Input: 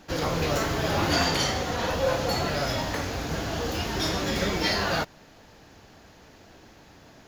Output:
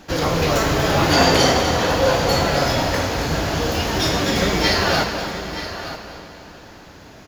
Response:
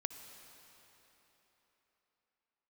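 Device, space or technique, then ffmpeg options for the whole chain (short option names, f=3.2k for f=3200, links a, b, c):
cave: -filter_complex "[0:a]asettb=1/sr,asplit=3[a][b][c];[a]atrim=end=1.174[d];[b]atrim=start=1.17:end=1.6,asetpts=PTS-STARTPTS,afade=t=in:d=0.004:c=qsin,afade=t=out:st=0.426:d=0.004:c=qsin,equalizer=f=460:t=o:w=1.7:g=6[e];[c]atrim=start=1.596[f];[d][e]acrossfade=d=0.004:c1=hsin:c2=qsin[g];[g][f]acrossfade=d=0.004:c1=qsin:c2=hsin,aecho=1:1:244:0.299,aecho=1:1:923:0.237[h];[1:a]atrim=start_sample=2205[i];[h][i]afir=irnorm=-1:irlink=0,volume=8.5dB"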